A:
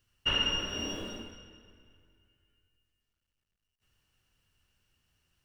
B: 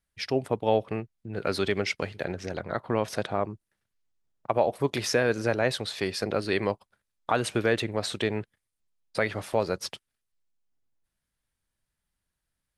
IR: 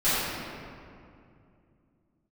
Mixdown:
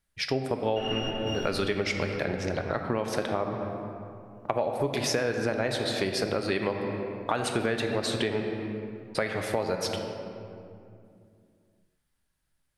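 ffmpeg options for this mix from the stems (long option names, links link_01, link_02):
-filter_complex "[0:a]adelay=500,volume=-4.5dB,asplit=2[link_01][link_02];[link_02]volume=-16dB[link_03];[1:a]volume=2.5dB,asplit=3[link_04][link_05][link_06];[link_05]volume=-20dB[link_07];[link_06]apad=whole_len=262255[link_08];[link_01][link_08]sidechaingate=range=-33dB:threshold=-37dB:ratio=16:detection=peak[link_09];[2:a]atrim=start_sample=2205[link_10];[link_03][link_07]amix=inputs=2:normalize=0[link_11];[link_11][link_10]afir=irnorm=-1:irlink=0[link_12];[link_09][link_04][link_12]amix=inputs=3:normalize=0,acompressor=threshold=-24dB:ratio=5"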